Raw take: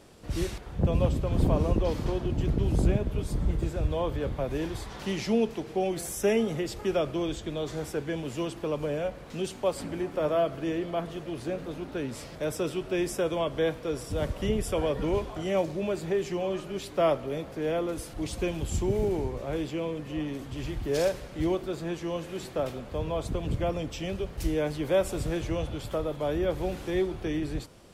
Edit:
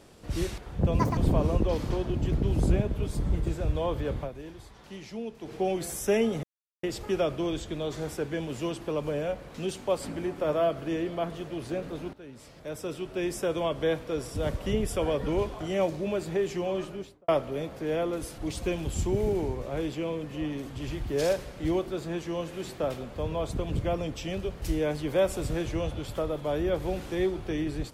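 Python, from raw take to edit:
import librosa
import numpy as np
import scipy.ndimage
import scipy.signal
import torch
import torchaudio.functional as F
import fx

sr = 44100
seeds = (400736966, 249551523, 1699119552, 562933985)

y = fx.studio_fade_out(x, sr, start_s=16.58, length_s=0.46)
y = fx.edit(y, sr, fx.speed_span(start_s=0.99, length_s=0.34, speed=1.86),
    fx.fade_down_up(start_s=4.38, length_s=1.27, db=-11.5, fade_s=0.47, curve='exp'),
    fx.insert_silence(at_s=6.59, length_s=0.4),
    fx.fade_in_from(start_s=11.89, length_s=1.48, floor_db=-16.5), tone=tone)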